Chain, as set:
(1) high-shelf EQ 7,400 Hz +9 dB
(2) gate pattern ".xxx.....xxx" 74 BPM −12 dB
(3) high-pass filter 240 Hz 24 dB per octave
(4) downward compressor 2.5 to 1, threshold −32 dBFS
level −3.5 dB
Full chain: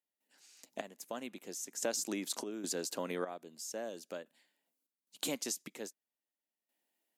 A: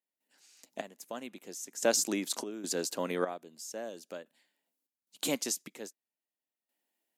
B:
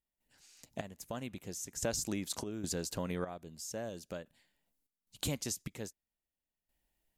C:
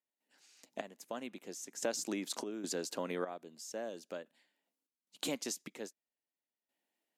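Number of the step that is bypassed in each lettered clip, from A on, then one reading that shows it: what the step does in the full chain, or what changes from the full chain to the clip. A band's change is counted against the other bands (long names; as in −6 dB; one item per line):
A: 4, change in momentary loudness spread +6 LU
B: 3, 125 Hz band +13.5 dB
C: 1, 8 kHz band −3.5 dB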